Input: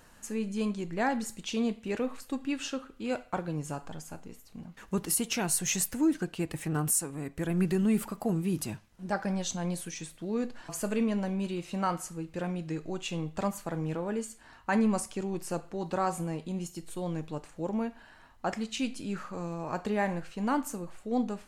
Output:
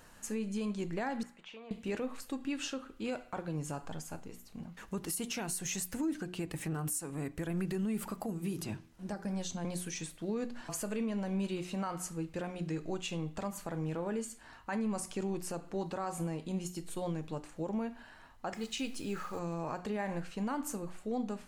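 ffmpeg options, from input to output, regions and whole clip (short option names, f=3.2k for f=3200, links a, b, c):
-filter_complex "[0:a]asettb=1/sr,asplit=3[a][b][c];[a]atrim=end=1.234[d];[b]atrim=start=1.23:end=1.71,asetpts=PTS-STARTPTS,afade=t=in:d=0.004:c=qsin,afade=t=out:st=0.476:d=0.004:c=qsin,acrossover=split=560 2600:gain=0.112 1 0.0631[e][f][g];[e][f][g]amix=inputs=3:normalize=0,acompressor=threshold=-47dB:ratio=3:attack=3.2:release=140:knee=1:detection=peak[h];[c]atrim=start=1.706[i];[d][h]acrossfade=d=0.004:c1=hsin:c2=qsin[j];[j][i]acrossfade=d=0.004:c1=qsin:c2=hsin,asettb=1/sr,asplit=3[k][l][m];[k]atrim=end=8.234[n];[l]atrim=start=8.23:end=9.65,asetpts=PTS-STARTPTS,afade=t=in:d=0.004:c=qsin,afade=t=out:st=1.416:d=0.004:c=qsin,acrossover=split=400|5900[o][p][q];[o]acompressor=threshold=-33dB:ratio=4[r];[p]acompressor=threshold=-43dB:ratio=4[s];[q]acompressor=threshold=-48dB:ratio=4[t];[r][s][t]amix=inputs=3:normalize=0,bandreject=f=80.84:t=h:w=4,bandreject=f=161.68:t=h:w=4,bandreject=f=242.52:t=h:w=4,bandreject=f=323.36:t=h:w=4,bandreject=f=404.2:t=h:w=4,bandreject=f=485.04:t=h:w=4[u];[m]atrim=start=9.646[v];[n][u]acrossfade=d=0.004:c1=hsin:c2=qsin[w];[w][v]acrossfade=d=0.004:c1=qsin:c2=hsin,asettb=1/sr,asplit=3[x][y][z];[x]atrim=end=18.544[aa];[y]atrim=start=18.54:end=19.39,asetpts=PTS-STARTPTS,afade=t=in:d=0.004:c=qsin,afade=t=out:st=0.846:d=0.004:c=qsin,aecho=1:1:2.4:0.34,atrim=end_sample=37485,acrusher=bits=8:mix=0:aa=0.5[ab];[z]atrim=start=19.386[ac];[aa][ab]acrossfade=d=0.004:c1=hsin:c2=qsin[ad];[ad][ac]acrossfade=d=0.004:c1=qsin:c2=hsin,bandreject=f=60:t=h:w=6,bandreject=f=120:t=h:w=6,bandreject=f=180:t=h:w=6,bandreject=f=240:t=h:w=6,bandreject=f=300:t=h:w=6,bandreject=f=360:t=h:w=6,alimiter=level_in=3dB:limit=-24dB:level=0:latency=1:release=151,volume=-3dB"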